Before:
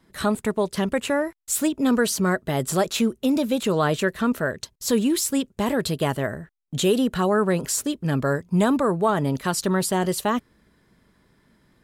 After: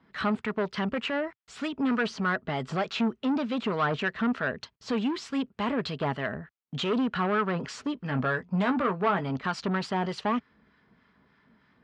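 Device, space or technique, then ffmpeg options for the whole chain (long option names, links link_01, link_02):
guitar amplifier with harmonic tremolo: -filter_complex "[0:a]acrossover=split=960[link_01][link_02];[link_01]aeval=exprs='val(0)*(1-0.5/2+0.5/2*cos(2*PI*3.3*n/s))':channel_layout=same[link_03];[link_02]aeval=exprs='val(0)*(1-0.5/2-0.5/2*cos(2*PI*3.3*n/s))':channel_layout=same[link_04];[link_03][link_04]amix=inputs=2:normalize=0,asoftclip=type=tanh:threshold=-21.5dB,highpass=96,equalizer=frequency=110:width_type=q:width=4:gain=-9,equalizer=frequency=170:width_type=q:width=4:gain=-4,equalizer=frequency=340:width_type=q:width=4:gain=-9,equalizer=frequency=550:width_type=q:width=4:gain=-6,equalizer=frequency=1300:width_type=q:width=4:gain=3,equalizer=frequency=3800:width_type=q:width=4:gain=-5,lowpass=frequency=4100:width=0.5412,lowpass=frequency=4100:width=1.3066,asettb=1/sr,asplit=3[link_05][link_06][link_07];[link_05]atrim=end=7.954[link_08];[link_06]atrim=start=7.95:end=9.3,asetpts=PTS-STARTPTS,afade=type=in:duration=0.004:curve=qsin,afade=type=out:start_time=1.346:duration=0.004:curve=qsin,asplit=2[link_09][link_10];[link_10]adelay=16,volume=-8dB[link_11];[link_09][link_11]amix=inputs=2:normalize=0,atrim=end_sample=59535[link_12];[link_07]atrim=start=9.296[link_13];[link_08][link_12]acrossfade=duration=0.004:curve1=hsin:curve2=qsin[link_14];[link_14][link_13]acrossfade=duration=0.004:curve1=qsin:curve2=hsin,volume=2.5dB"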